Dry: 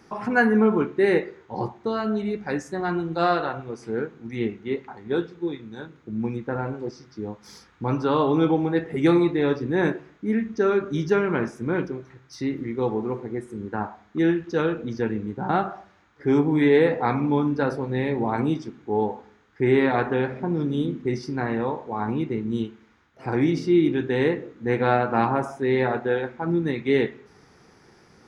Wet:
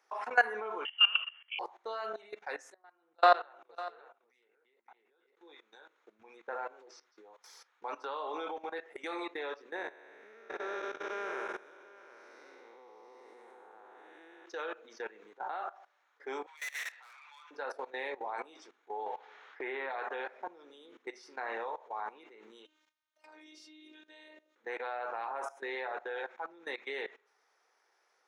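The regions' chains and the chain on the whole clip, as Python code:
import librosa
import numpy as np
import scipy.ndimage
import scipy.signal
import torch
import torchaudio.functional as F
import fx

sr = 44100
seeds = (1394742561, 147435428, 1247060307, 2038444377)

y = fx.chain(x, sr, fx.high_shelf(hz=2400.0, db=-6.5),
    fx.freq_invert(carrier_hz=3200), at=(0.85, 1.59))
y = fx.chain(y, sr, fx.level_steps(step_db=20),
    fx.echo_single(ms=556, db=-4.5),
    fx.band_widen(depth_pct=100), at=(2.74, 5.37))
y = fx.chain(y, sr, fx.spec_blur(span_ms=478.0),
    fx.echo_single(ms=733, db=-4.5), at=(9.76, 14.46))
y = fx.chain(y, sr, fx.highpass(hz=1300.0, slope=24),
    fx.peak_eq(hz=2600.0, db=7.5, octaves=2.4),
    fx.tube_stage(drive_db=34.0, bias=0.5), at=(16.46, 17.51))
y = fx.chain(y, sr, fx.lowpass(hz=3000.0, slope=12),
    fx.band_squash(depth_pct=70), at=(19.06, 19.9))
y = fx.chain(y, sr, fx.robotise(hz=308.0),
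    fx.band_shelf(hz=910.0, db=-9.0, octaves=2.9), at=(22.65, 24.56))
y = scipy.signal.sosfilt(scipy.signal.butter(4, 550.0, 'highpass', fs=sr, output='sos'), y)
y = fx.notch(y, sr, hz=4800.0, q=14.0)
y = fx.level_steps(y, sr, step_db=18)
y = y * 10.0 ** (-2.0 / 20.0)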